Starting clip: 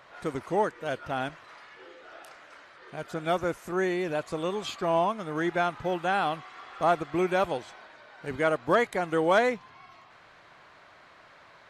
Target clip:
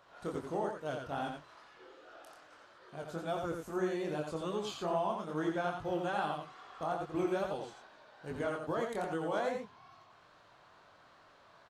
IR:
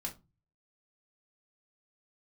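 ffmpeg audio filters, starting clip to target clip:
-filter_complex "[0:a]equalizer=frequency=2100:width=2.1:gain=-8.5,alimiter=limit=-20dB:level=0:latency=1:release=178,flanger=delay=19:depth=5.8:speed=2.4,asplit=2[link_01][link_02];[link_02]aecho=0:1:86:0.562[link_03];[link_01][link_03]amix=inputs=2:normalize=0,volume=-3.5dB"

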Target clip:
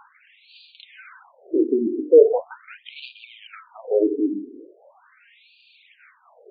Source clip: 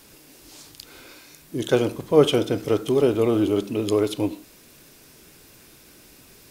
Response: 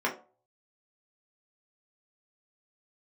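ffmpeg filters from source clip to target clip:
-filter_complex "[0:a]aemphasis=mode=reproduction:type=riaa,bandreject=frequency=50:width_type=h:width=6,bandreject=frequency=100:width_type=h:width=6,bandreject=frequency=150:width_type=h:width=6,bandreject=frequency=200:width_type=h:width=6,bandreject=frequency=250:width_type=h:width=6,bandreject=frequency=300:width_type=h:width=6,bandreject=frequency=350:width_type=h:width=6,bandreject=frequency=400:width_type=h:width=6,bandreject=frequency=450:width_type=h:width=6,asplit=2[link_01][link_02];[link_02]acompressor=threshold=-29dB:ratio=4,volume=3dB[link_03];[link_01][link_03]amix=inputs=2:normalize=0,aphaser=in_gain=1:out_gain=1:delay=4.3:decay=0.55:speed=0.66:type=sinusoidal,asoftclip=type=hard:threshold=-5.5dB,afftfilt=real='re*between(b*sr/1024,300*pow(3400/300,0.5+0.5*sin(2*PI*0.4*pts/sr))/1.41,300*pow(3400/300,0.5+0.5*sin(2*PI*0.4*pts/sr))*1.41)':imag='im*between(b*sr/1024,300*pow(3400/300,0.5+0.5*sin(2*PI*0.4*pts/sr))/1.41,300*pow(3400/300,0.5+0.5*sin(2*PI*0.4*pts/sr))*1.41)':win_size=1024:overlap=0.75"

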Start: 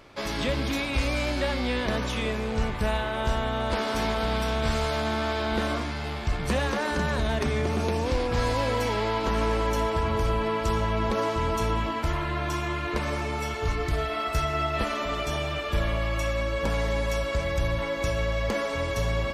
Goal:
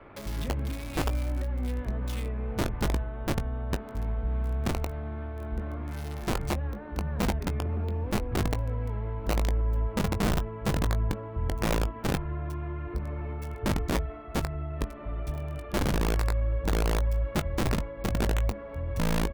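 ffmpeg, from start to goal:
ffmpeg -i in.wav -filter_complex "[0:a]acrossover=split=140[link_01][link_02];[link_02]acompressor=threshold=-39dB:ratio=8[link_03];[link_01][link_03]amix=inputs=2:normalize=0,adynamicequalizer=threshold=0.002:dfrequency=160:dqfactor=4.7:tfrequency=160:tqfactor=4.7:attack=5:release=100:ratio=0.375:range=3:mode=cutabove:tftype=bell,acrossover=split=520|2300[link_04][link_05][link_06];[link_04]aeval=exprs='(mod(15.8*val(0)+1,2)-1)/15.8':channel_layout=same[link_07];[link_05]alimiter=level_in=17.5dB:limit=-24dB:level=0:latency=1:release=475,volume=-17.5dB[link_08];[link_06]acrusher=bits=6:mix=0:aa=0.000001[link_09];[link_07][link_08][link_09]amix=inputs=3:normalize=0,asplit=2[link_10][link_11];[link_11]adelay=20,volume=-11dB[link_12];[link_10][link_12]amix=inputs=2:normalize=0,volume=2.5dB" out.wav

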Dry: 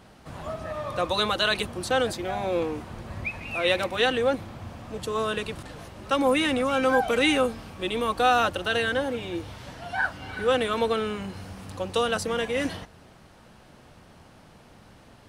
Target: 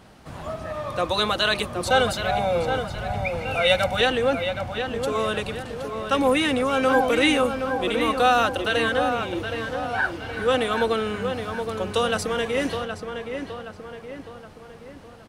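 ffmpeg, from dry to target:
ffmpeg -i in.wav -filter_complex "[0:a]asettb=1/sr,asplit=3[link_01][link_02][link_03];[link_01]atrim=end=1.864[link_04];[link_02]atrim=start=1.86:end=4.01,asetpts=PTS-STARTPTS,afade=type=in:duration=0.004:curve=qsin,afade=type=out:start_time=2.146:duration=0.004:curve=qsin,aecho=1:1:1.4:0.84,atrim=end_sample=94815[link_05];[link_03]atrim=start=4.006[link_06];[link_04][link_05]acrossfade=duration=0.004:curve1=hsin:curve2=qsin[link_07];[link_07][link_06]acrossfade=duration=0.004:curve1=qsin:curve2=hsin,asplit=2[link_08][link_09];[link_09]adelay=770,lowpass=frequency=2800:poles=1,volume=-6.5dB,asplit=2[link_10][link_11];[link_11]adelay=770,lowpass=frequency=2800:poles=1,volume=0.5,asplit=2[link_12][link_13];[link_13]adelay=770,lowpass=frequency=2800:poles=1,volume=0.5,asplit=2[link_14][link_15];[link_15]adelay=770,lowpass=frequency=2800:poles=1,volume=0.5,asplit=2[link_16][link_17];[link_17]adelay=770,lowpass=frequency=2800:poles=1,volume=0.5,asplit=2[link_18][link_19];[link_19]adelay=770,lowpass=frequency=2800:poles=1,volume=0.5[link_20];[link_08][link_10][link_12][link_14][link_16][link_18][link_20]amix=inputs=7:normalize=0,volume=2dB" out.wav

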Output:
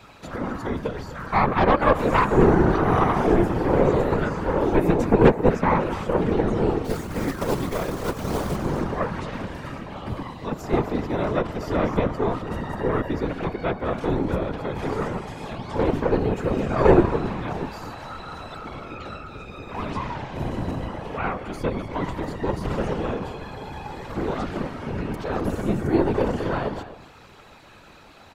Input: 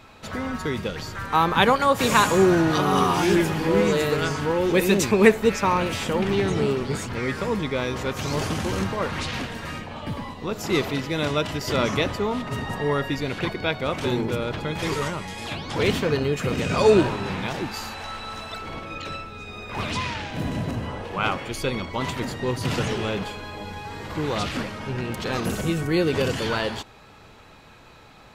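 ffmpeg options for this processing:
ffmpeg -i in.wav -filter_complex "[0:a]bandreject=frequency=50:width_type=h:width=6,bandreject=frequency=100:width_type=h:width=6,bandreject=frequency=150:width_type=h:width=6,bandreject=frequency=200:width_type=h:width=6,bandreject=frequency=250:width_type=h:width=6,acrossover=split=1400[link_01][link_02];[link_01]aeval=exprs='0.562*(cos(1*acos(clip(val(0)/0.562,-1,1)))-cos(1*PI/2))+0.1*(cos(4*acos(clip(val(0)/0.562,-1,1)))-cos(4*PI/2))+0.0282*(cos(8*acos(clip(val(0)/0.562,-1,1)))-cos(8*PI/2))':channel_layout=same[link_03];[link_02]acompressor=threshold=-47dB:ratio=5[link_04];[link_03][link_04]amix=inputs=2:normalize=0,asplit=3[link_05][link_06][link_07];[link_05]afade=type=out:start_time=6.84:duration=0.02[link_08];[link_06]acrusher=bits=3:mode=log:mix=0:aa=0.000001,afade=type=in:start_time=6.84:duration=0.02,afade=type=out:start_time=8.55:duration=0.02[link_09];[link_07]afade=type=in:start_time=8.55:duration=0.02[link_10];[link_08][link_09][link_10]amix=inputs=3:normalize=0,aecho=1:1:255:0.211,afftfilt=real='hypot(re,im)*cos(2*PI*random(0))':imag='hypot(re,im)*sin(2*PI*random(1))':win_size=512:overlap=0.75,volume=6.5dB" out.wav

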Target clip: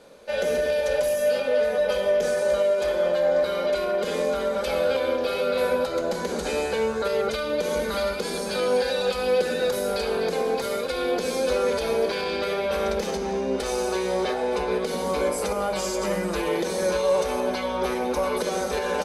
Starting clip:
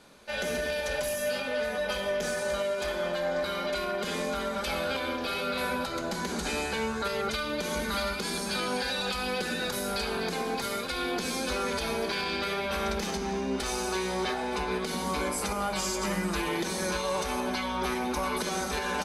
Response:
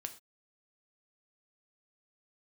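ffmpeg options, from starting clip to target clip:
-af "equalizer=frequency=510:width_type=o:width=0.65:gain=14"

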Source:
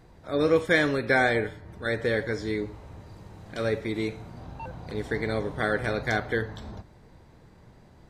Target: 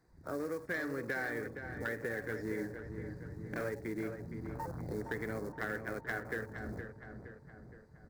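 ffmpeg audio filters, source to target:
ffmpeg -i in.wav -filter_complex "[0:a]bandreject=frequency=50:width_type=h:width=6,bandreject=frequency=100:width_type=h:width=6,bandreject=frequency=150:width_type=h:width=6,bandreject=frequency=200:width_type=h:width=6,bandreject=frequency=250:width_type=h:width=6,asettb=1/sr,asplit=3[link_01][link_02][link_03];[link_01]atrim=end=5.524[link_04];[link_02]atrim=start=5.52:end=6.25,asetpts=PTS-STARTPTS,afade=type=in:duration=0.004:curve=qsin,afade=type=out:start_time=0.726:duration=0.004:curve=qsin,agate=range=-12dB:threshold=-27dB:ratio=16:detection=peak[link_05];[link_03]atrim=start=6.246[link_06];[link_04][link_05]acrossfade=duration=0.004:curve1=hsin:curve2=qsin[link_07];[link_07][link_06]acrossfade=duration=0.004:curve1=qsin:curve2=hsin,afwtdn=0.0126,acrossover=split=280[link_08][link_09];[link_08]lowshelf=frequency=81:gain=-11[link_10];[link_09]acrusher=bits=5:mode=log:mix=0:aa=0.000001[link_11];[link_10][link_11]amix=inputs=2:normalize=0,acompressor=threshold=-37dB:ratio=6,firequalizer=gain_entry='entry(290,0);entry(630,-4);entry(1800,3);entry(3000,-17);entry(4400,2)':delay=0.05:min_phase=1,asoftclip=type=tanh:threshold=-27.5dB,asplit=3[link_12][link_13][link_14];[link_12]afade=type=out:start_time=2.57:duration=0.02[link_15];[link_13]asplit=2[link_16][link_17];[link_17]adelay=42,volume=-4dB[link_18];[link_16][link_18]amix=inputs=2:normalize=0,afade=type=in:start_time=2.57:duration=0.02,afade=type=out:start_time=3.68:duration=0.02[link_19];[link_14]afade=type=in:start_time=3.68:duration=0.02[link_20];[link_15][link_19][link_20]amix=inputs=3:normalize=0,asplit=2[link_21][link_22];[link_22]adelay=467,lowpass=frequency=2500:poles=1,volume=-8dB,asplit=2[link_23][link_24];[link_24]adelay=467,lowpass=frequency=2500:poles=1,volume=0.55,asplit=2[link_25][link_26];[link_26]adelay=467,lowpass=frequency=2500:poles=1,volume=0.55,asplit=2[link_27][link_28];[link_28]adelay=467,lowpass=frequency=2500:poles=1,volume=0.55,asplit=2[link_29][link_30];[link_30]adelay=467,lowpass=frequency=2500:poles=1,volume=0.55,asplit=2[link_31][link_32];[link_32]adelay=467,lowpass=frequency=2500:poles=1,volume=0.55,asplit=2[link_33][link_34];[link_34]adelay=467,lowpass=frequency=2500:poles=1,volume=0.55[link_35];[link_21][link_23][link_25][link_27][link_29][link_31][link_33][link_35]amix=inputs=8:normalize=0,volume=2.5dB" out.wav

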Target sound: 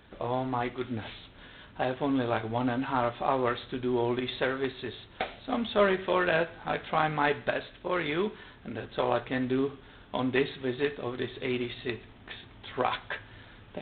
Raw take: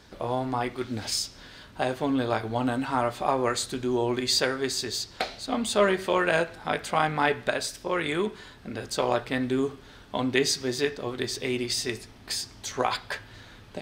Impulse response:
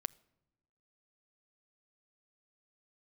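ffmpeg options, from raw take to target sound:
-af "volume=-2dB" -ar 8000 -c:a adpcm_g726 -b:a 24k

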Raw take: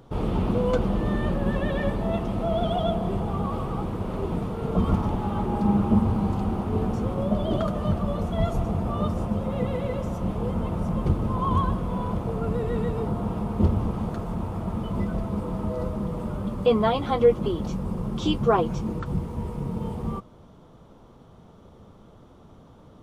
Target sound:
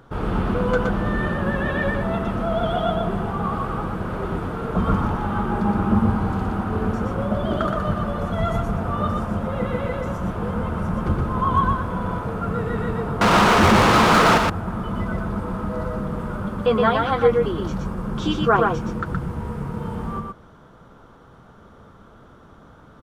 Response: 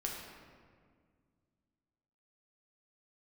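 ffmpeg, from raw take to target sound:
-filter_complex "[0:a]equalizer=frequency=1500:width_type=o:width=0.71:gain=13,asettb=1/sr,asplit=3[link_01][link_02][link_03];[link_01]atrim=end=13.214[link_04];[link_02]atrim=start=13.21:end=14.38,asetpts=PTS-STARTPTS,afade=type=in:duration=0.004:curve=qsin,afade=type=out:start_time=1.166:duration=0.004:curve=qsin,asplit=2[link_05][link_06];[link_06]highpass=frequency=720:poles=1,volume=41dB,asoftclip=type=tanh:threshold=-9.5dB[link_07];[link_05][link_07]amix=inputs=2:normalize=0,lowpass=frequency=4900:poles=1,volume=-6dB[link_08];[link_03]atrim=start=14.376[link_09];[link_04][link_08]acrossfade=duration=0.004:curve1=hsin:curve2=qsin[link_10];[link_10][link_09]acrossfade=duration=0.004:curve1=qsin:curve2=hsin,asplit=2[link_11][link_12];[link_12]aecho=0:1:120:0.668[link_13];[link_11][link_13]amix=inputs=2:normalize=0"

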